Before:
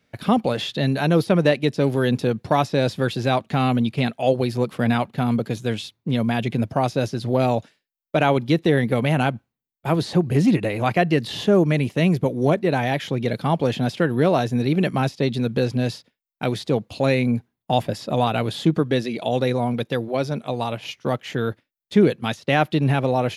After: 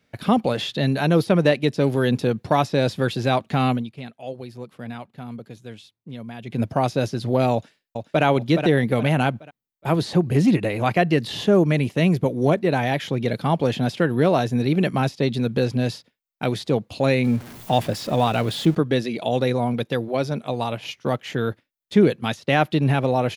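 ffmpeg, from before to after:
-filter_complex "[0:a]asplit=2[a][b];[b]afade=t=in:st=7.53:d=0.01,afade=t=out:st=8.24:d=0.01,aecho=0:1:420|840|1260|1680:0.473151|0.165603|0.057961|0.0202864[c];[a][c]amix=inputs=2:normalize=0,asettb=1/sr,asplit=3[d][e][f];[d]atrim=end=17.244[g];[e]atrim=start=17.24:end=18.75,asetpts=PTS-STARTPTS,afade=t=in:d=0.004:c=qsin,afade=t=out:st=1.506:d=0.004:c=qsin,aeval=exprs='val(0)+0.5*0.02*sgn(val(0))':c=same[h];[f]atrim=start=18.746[i];[g][h]acrossfade=d=0.004:c1=hsin:c2=qsin[j];[j][i]acrossfade=d=0.004:c1=qsin:c2=hsin,asplit=3[k][l][m];[k]atrim=end=3.93,asetpts=PTS-STARTPTS,afade=t=out:st=3.71:d=0.22:c=qua:silence=0.199526[n];[l]atrim=start=3.93:end=6.39,asetpts=PTS-STARTPTS,volume=-14dB[o];[m]atrim=start=6.39,asetpts=PTS-STARTPTS,afade=t=in:d=0.22:c=qua:silence=0.199526[p];[n][o][p]concat=n=3:v=0:a=1"

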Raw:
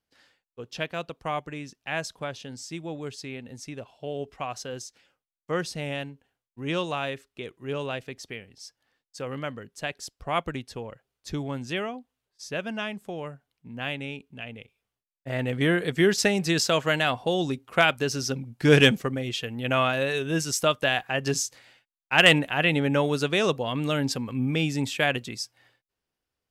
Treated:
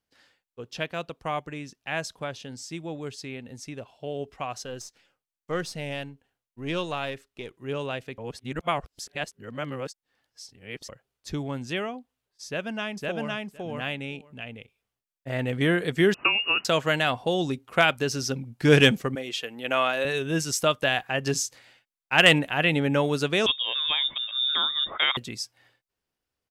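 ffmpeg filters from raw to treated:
-filter_complex "[0:a]asettb=1/sr,asplit=3[a][b][c];[a]atrim=end=4.644[d];[b]atrim=start=4.64:end=7.54,asetpts=PTS-STARTPTS,afade=t=in:d=0.004:c=qsin,afade=t=out:st=2.896:d=0.004:c=qsin,aeval=exprs='if(lt(val(0),0),0.708*val(0),val(0))':c=same[e];[c]atrim=start=7.536[f];[d][e]acrossfade=d=0.004:c1=hsin:c2=qsin[g];[g][f]acrossfade=d=0.004:c1=qsin:c2=hsin,asplit=2[h][i];[i]afade=t=in:st=12.46:d=0.01,afade=t=out:st=13.3:d=0.01,aecho=0:1:510|1020:0.944061|0.0944061[j];[h][j]amix=inputs=2:normalize=0,asettb=1/sr,asplit=3[k][l][m];[k]atrim=end=16.144[n];[l]atrim=start=16.14:end=16.65,asetpts=PTS-STARTPTS,afade=t=in:d=0.004:c=qsin,afade=t=out:st=0.506:d=0.004:c=qsin,lowpass=f=2.6k:t=q:w=0.5098,lowpass=f=2.6k:t=q:w=0.6013,lowpass=f=2.6k:t=q:w=0.9,lowpass=f=2.6k:t=q:w=2.563,afreqshift=-3000[o];[m]atrim=start=16.646[p];[n][o]acrossfade=d=0.004:c1=hsin:c2=qsin[q];[q][p]acrossfade=d=0.004:c1=qsin:c2=hsin,asettb=1/sr,asplit=3[r][s][t];[r]atrim=end=19.154[u];[s]atrim=start=19.15:end=20.05,asetpts=PTS-STARTPTS,afade=t=in:d=0.004:c=qsin,afade=t=out:st=0.896:d=0.004:c=qsin,highpass=330[v];[t]atrim=start=20.046[w];[u][v]acrossfade=d=0.004:c1=hsin:c2=qsin[x];[x][w]acrossfade=d=0.004:c1=qsin:c2=hsin,asettb=1/sr,asplit=3[y][z][aa];[y]atrim=end=23.464[ab];[z]atrim=start=23.46:end=25.17,asetpts=PTS-STARTPTS,afade=t=in:d=0.004:c=qsin,afade=t=out:st=1.706:d=0.004:c=qsin,lowpass=f=3.2k:t=q:w=0.5098,lowpass=f=3.2k:t=q:w=0.6013,lowpass=f=3.2k:t=q:w=0.9,lowpass=f=3.2k:t=q:w=2.563,afreqshift=-3800[ac];[aa]atrim=start=25.166[ad];[ab][ac]acrossfade=d=0.004:c1=hsin:c2=qsin[ae];[ae][ad]acrossfade=d=0.004:c1=qsin:c2=hsin,asplit=3[af][ag][ah];[af]atrim=end=8.182[ai];[ag]atrim=start=8.178:end=10.892,asetpts=PTS-STARTPTS,areverse[aj];[ah]atrim=start=10.888[ak];[ai][aj]acrossfade=d=0.004:c1=hsin:c2=hsin[al];[al][ak]acrossfade=d=0.004:c1=hsin:c2=hsin"

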